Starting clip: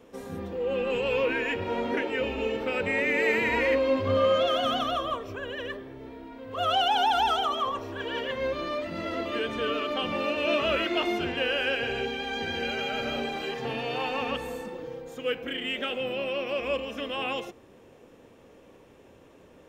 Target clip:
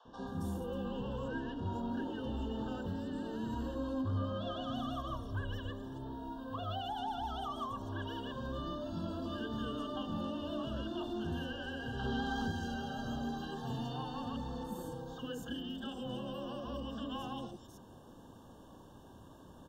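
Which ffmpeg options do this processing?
ffmpeg -i in.wav -filter_complex "[0:a]asettb=1/sr,asplit=3[link_01][link_02][link_03];[link_01]atrim=end=1.014[link_04];[link_02]atrim=start=1.01:end=1.47,asetpts=PTS-STARTPTS,afade=type=in:duration=0.004:curve=qsin,afade=type=out:start_time=0.456:duration=0.004:curve=qsin,aemphasis=mode=reproduction:type=cd[link_05];[link_03]atrim=start=1.466[link_06];[link_04][link_05]acrossfade=duration=0.004:curve1=hsin:curve2=qsin[link_07];[link_07][link_06]acrossfade=duration=0.004:curve1=qsin:curve2=hsin,aecho=1:1:1.1:0.58,asettb=1/sr,asplit=3[link_08][link_09][link_10];[link_08]atrim=end=4.984[link_11];[link_09]atrim=start=4.98:end=5.65,asetpts=PTS-STARTPTS,afade=type=in:duration=0.004:curve=qsin,afade=type=out:start_time=0.666:duration=0.004:curve=qsin,asubboost=boost=11:cutoff=190[link_12];[link_10]atrim=start=5.646[link_13];[link_11][link_12]acrossfade=duration=0.004:curve1=hsin:curve2=qsin[link_14];[link_14][link_13]acrossfade=duration=0.004:curve1=qsin:curve2=hsin,acrossover=split=320[link_15][link_16];[link_16]acompressor=threshold=-41dB:ratio=3[link_17];[link_15][link_17]amix=inputs=2:normalize=0,asplit=2[link_18][link_19];[link_19]alimiter=level_in=5.5dB:limit=-24dB:level=0:latency=1,volume=-5.5dB,volume=3dB[link_20];[link_18][link_20]amix=inputs=2:normalize=0,asettb=1/sr,asplit=3[link_21][link_22][link_23];[link_21]atrim=end=11.994[link_24];[link_22]atrim=start=11.99:end=12.47,asetpts=PTS-STARTPTS,afade=type=in:duration=0.004:curve=qsin,afade=type=out:start_time=0.476:duration=0.004:curve=qsin,acontrast=52[link_25];[link_23]atrim=start=12.466[link_26];[link_24][link_25]acrossfade=duration=0.004:curve1=hsin:curve2=qsin[link_27];[link_27][link_26]acrossfade=duration=0.004:curve1=qsin:curve2=hsin,asoftclip=type=tanh:threshold=-21dB,asuperstop=centerf=2200:order=12:qfactor=1.7,acrossover=split=660|4900[link_28][link_29][link_30];[link_28]adelay=50[link_31];[link_30]adelay=270[link_32];[link_31][link_29][link_32]amix=inputs=3:normalize=0,volume=-7dB" out.wav

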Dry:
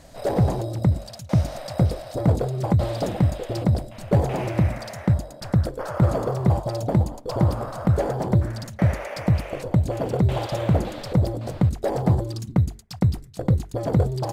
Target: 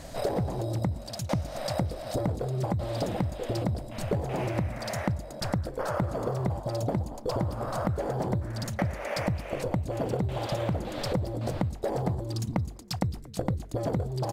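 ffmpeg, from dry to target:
ffmpeg -i in.wav -filter_complex "[0:a]acompressor=threshold=-31dB:ratio=10,asplit=2[link_01][link_02];[link_02]asplit=3[link_03][link_04][link_05];[link_03]adelay=230,afreqshift=120,volume=-24dB[link_06];[link_04]adelay=460,afreqshift=240,volume=-29.7dB[link_07];[link_05]adelay=690,afreqshift=360,volume=-35.4dB[link_08];[link_06][link_07][link_08]amix=inputs=3:normalize=0[link_09];[link_01][link_09]amix=inputs=2:normalize=0,volume=5dB" out.wav

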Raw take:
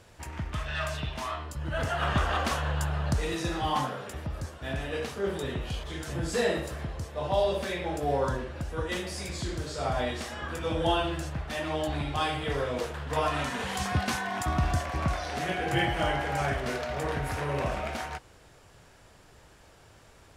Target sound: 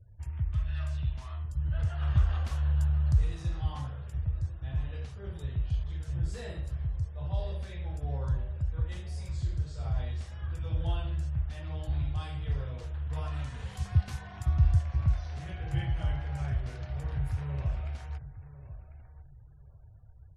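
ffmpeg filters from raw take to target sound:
ffmpeg -i in.wav -filter_complex "[0:a]asplit=2[link_01][link_02];[link_02]adelay=1046,lowpass=frequency=2200:poles=1,volume=-14.5dB,asplit=2[link_03][link_04];[link_04]adelay=1046,lowpass=frequency=2200:poles=1,volume=0.26,asplit=2[link_05][link_06];[link_06]adelay=1046,lowpass=frequency=2200:poles=1,volume=0.26[link_07];[link_01][link_03][link_05][link_07]amix=inputs=4:normalize=0,afftfilt=real='re*gte(hypot(re,im),0.00355)':imag='im*gte(hypot(re,im),0.00355)':win_size=1024:overlap=0.75,firequalizer=gain_entry='entry(110,0);entry(220,-23);entry(3800,-20)':delay=0.05:min_phase=1,volume=5.5dB" out.wav

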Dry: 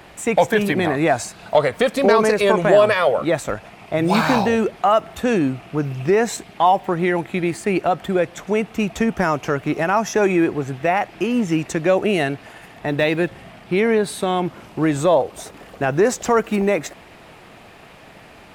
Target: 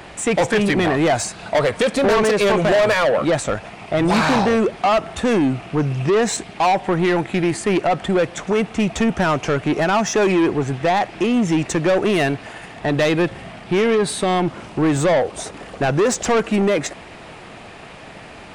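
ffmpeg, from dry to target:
ffmpeg -i in.wav -af "aresample=22050,aresample=44100,asoftclip=type=tanh:threshold=-18dB,volume=5.5dB" out.wav

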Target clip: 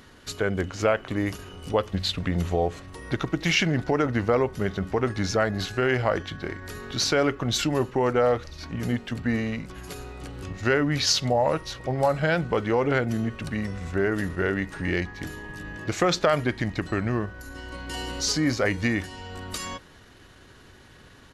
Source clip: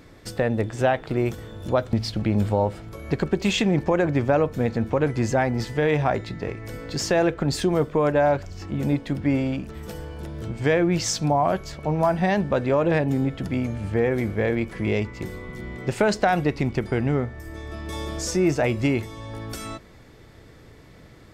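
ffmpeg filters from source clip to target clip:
ffmpeg -i in.wav -af "tiltshelf=frequency=970:gain=-4.5,asetrate=37084,aresample=44100,atempo=1.18921" out.wav

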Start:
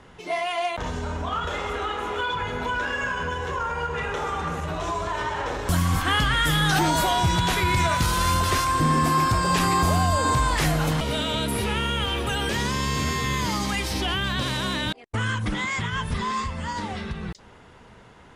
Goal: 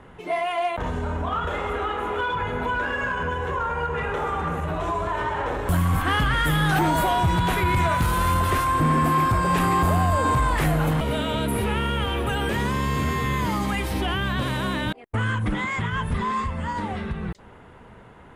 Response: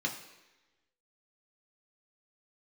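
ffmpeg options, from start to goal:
-af "equalizer=frequency=5400:width=0.91:gain=-14.5,asoftclip=type=tanh:threshold=-16dB,volume=3dB"

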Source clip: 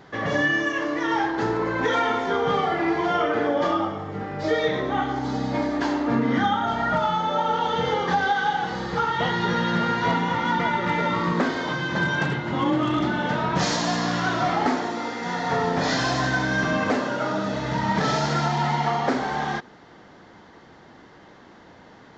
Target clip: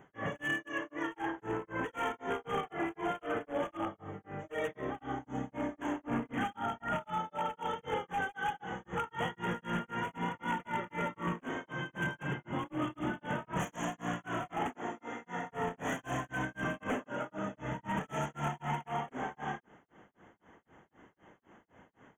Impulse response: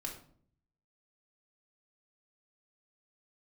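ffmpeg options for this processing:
-af "aeval=exprs='0.141*(abs(mod(val(0)/0.141+3,4)-2)-1)':channel_layout=same,asuperstop=centerf=4500:order=12:qfactor=1.6,tremolo=f=3.9:d=1,volume=-8.5dB"

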